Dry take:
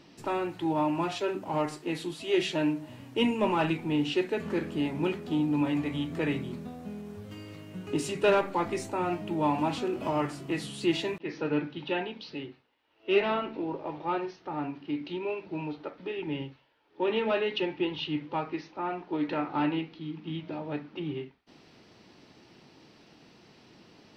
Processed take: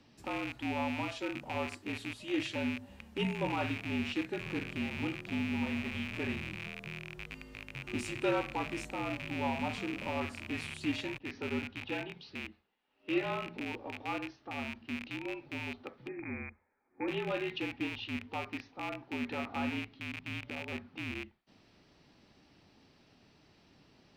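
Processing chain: rattling part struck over -42 dBFS, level -22 dBFS; 16.08–17.08 Chebyshev low-pass 2500 Hz, order 10; frequency shift -51 Hz; gain -7.5 dB

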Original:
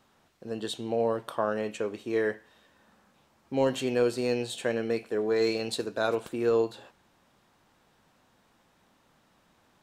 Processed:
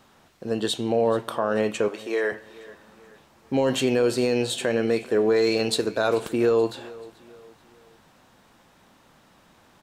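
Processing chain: limiter -21 dBFS, peak gain reduction 7.5 dB; 1.88–2.32 HPF 470 Hz 12 dB/oct; feedback echo 0.433 s, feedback 41%, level -20.5 dB; gain +8.5 dB

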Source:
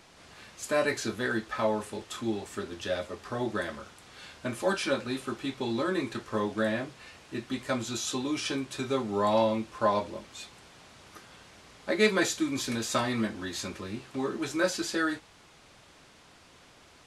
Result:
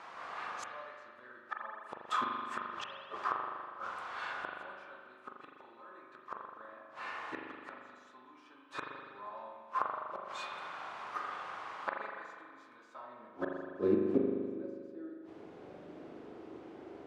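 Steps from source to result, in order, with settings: flipped gate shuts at -27 dBFS, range -31 dB; band-pass sweep 1100 Hz -> 360 Hz, 12.87–13.9; spring tank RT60 1.9 s, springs 40 ms, chirp 70 ms, DRR 0 dB; gain +14 dB

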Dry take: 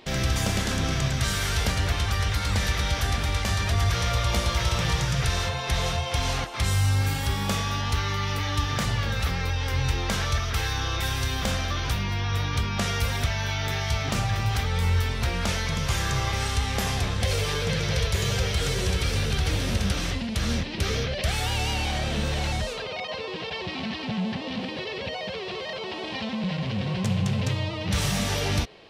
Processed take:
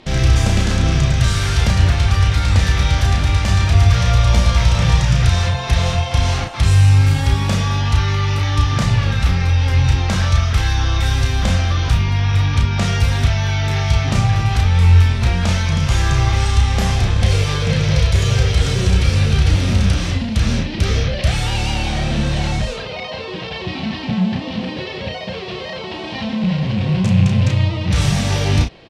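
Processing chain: rattling part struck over -24 dBFS, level -26 dBFS; LPF 9100 Hz 12 dB/oct; low shelf 270 Hz +8 dB; notch 420 Hz, Q 12; doubler 33 ms -5 dB; gain +3.5 dB

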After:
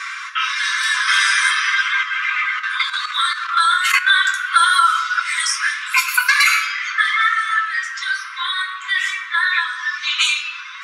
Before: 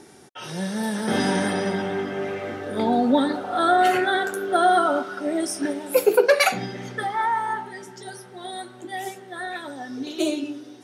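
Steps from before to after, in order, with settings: reverb removal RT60 0.65 s; reverb RT60 0.80 s, pre-delay 3 ms, DRR -3.5 dB; low-pass opened by the level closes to 2100 Hz, open at -13.5 dBFS; 2.03–4.1 level quantiser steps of 11 dB; brick-wall FIR high-pass 990 Hz; maximiser +12 dB; three-band squash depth 70%

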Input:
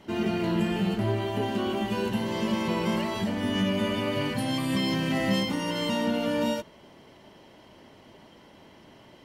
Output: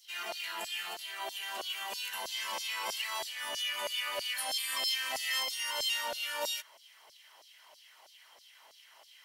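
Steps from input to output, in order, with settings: RIAA curve recording; LFO high-pass saw down 3.1 Hz 610–5300 Hz; gain -7 dB

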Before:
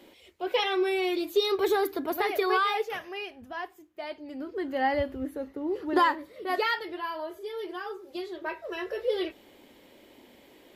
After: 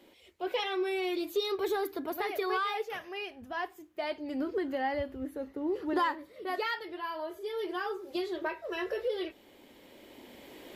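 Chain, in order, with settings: recorder AGC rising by 7.6 dB/s; in parallel at -10 dB: soft clip -20 dBFS, distortion -17 dB; on the sum: gain -8 dB

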